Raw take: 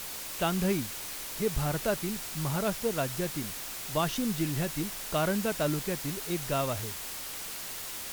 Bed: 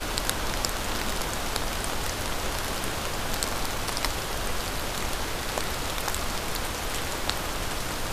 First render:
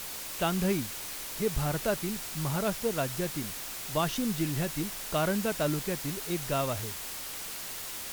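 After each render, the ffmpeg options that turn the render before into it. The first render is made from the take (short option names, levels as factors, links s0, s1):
-af anull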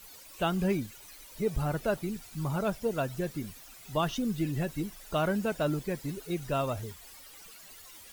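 -af "afftdn=nr=15:nf=-39"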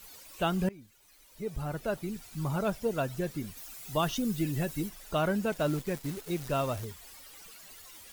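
-filter_complex "[0:a]asettb=1/sr,asplit=3[s0][s1][s2];[s0]atrim=end=3.574[s3];[s1]atrim=start=3.57:end=4.89,asetpts=PTS-STARTPTS,afade=t=in:d=0.004:c=qsin,afade=t=out:st=1.316:d=0.004:c=qsin,highshelf=f=6000:g=7[s4];[s2]atrim=start=4.886[s5];[s3][s4]acrossfade=d=0.004:c1=hsin:c2=qsin[s6];[s6][s5]acrossfade=d=0.004:c1=qsin:c2=hsin,asettb=1/sr,asplit=3[s7][s8][s9];[s7]atrim=end=5.524[s10];[s8]atrim=start=5.52:end=6.85,asetpts=PTS-STARTPTS,afade=t=in:d=0.004:c=qsin,afade=t=out:st=1.326:d=0.004:c=qsin,acrusher=bits=8:dc=4:mix=0:aa=0.000001[s11];[s9]atrim=start=6.846[s12];[s10][s11]acrossfade=d=0.004:c1=hsin:c2=qsin[s13];[s13][s12]acrossfade=d=0.004:c1=qsin:c2=hsin,asplit=2[s14][s15];[s14]atrim=end=0.69,asetpts=PTS-STARTPTS,afade=t=out:st=0.686:d=0.004:c=hsin:silence=0.0668344[s16];[s15]atrim=start=0.69,asetpts=PTS-STARTPTS,afade=t=in:d=1.75:silence=0.0668344[s17];[s16][s17]concat=n=2:v=0:a=1"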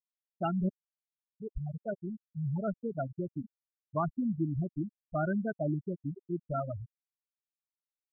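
-af "afftfilt=real='re*gte(hypot(re,im),0.126)':imag='im*gte(hypot(re,im),0.126)':win_size=1024:overlap=0.75,equalizer=f=500:t=o:w=0.32:g=-12.5"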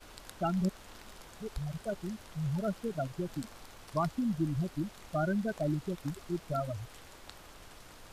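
-filter_complex "[1:a]volume=0.0794[s0];[0:a][s0]amix=inputs=2:normalize=0"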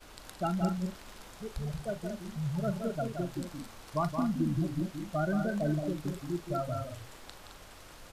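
-filter_complex "[0:a]asplit=2[s0][s1];[s1]adelay=40,volume=0.224[s2];[s0][s2]amix=inputs=2:normalize=0,aecho=1:1:172|215.7:0.447|0.398"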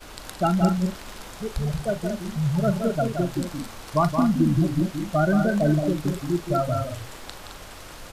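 -af "volume=3.16"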